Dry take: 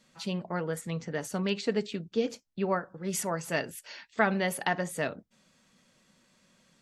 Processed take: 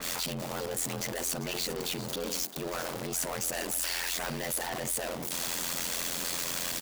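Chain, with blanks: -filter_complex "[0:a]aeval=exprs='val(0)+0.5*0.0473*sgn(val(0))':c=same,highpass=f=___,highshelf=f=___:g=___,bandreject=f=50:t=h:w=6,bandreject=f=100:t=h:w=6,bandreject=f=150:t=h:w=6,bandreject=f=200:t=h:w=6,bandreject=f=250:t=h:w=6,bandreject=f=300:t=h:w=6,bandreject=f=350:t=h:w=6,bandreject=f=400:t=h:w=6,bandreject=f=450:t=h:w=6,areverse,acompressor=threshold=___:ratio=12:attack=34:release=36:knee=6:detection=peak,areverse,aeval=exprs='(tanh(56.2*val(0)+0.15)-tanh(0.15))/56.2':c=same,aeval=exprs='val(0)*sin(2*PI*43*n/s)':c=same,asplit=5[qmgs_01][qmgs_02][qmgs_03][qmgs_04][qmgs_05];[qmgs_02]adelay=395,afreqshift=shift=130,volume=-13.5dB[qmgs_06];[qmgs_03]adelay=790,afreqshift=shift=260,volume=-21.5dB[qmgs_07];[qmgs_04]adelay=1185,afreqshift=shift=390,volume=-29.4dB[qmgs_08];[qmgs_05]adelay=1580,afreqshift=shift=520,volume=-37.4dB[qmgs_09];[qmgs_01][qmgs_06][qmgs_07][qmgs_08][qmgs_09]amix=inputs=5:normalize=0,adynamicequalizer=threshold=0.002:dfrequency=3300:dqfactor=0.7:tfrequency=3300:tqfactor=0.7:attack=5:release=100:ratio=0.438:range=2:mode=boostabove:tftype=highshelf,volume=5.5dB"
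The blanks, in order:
240, 6800, 11.5, -33dB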